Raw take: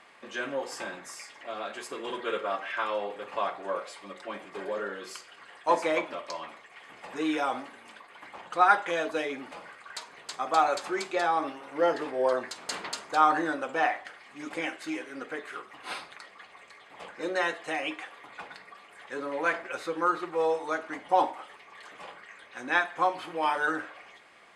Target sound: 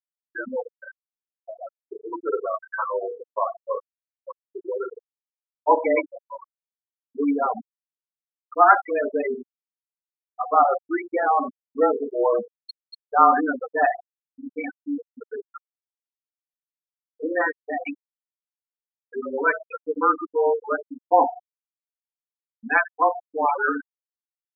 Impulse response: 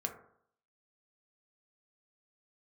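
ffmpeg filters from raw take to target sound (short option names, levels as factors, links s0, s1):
-filter_complex "[0:a]asplit=2[s0][s1];[1:a]atrim=start_sample=2205,lowshelf=f=200:g=7[s2];[s1][s2]afir=irnorm=-1:irlink=0,volume=0.447[s3];[s0][s3]amix=inputs=2:normalize=0,afreqshift=-27,afftfilt=real='re*gte(hypot(re,im),0.158)':imag='im*gte(hypot(re,im),0.158)':win_size=1024:overlap=0.75,volume=1.5"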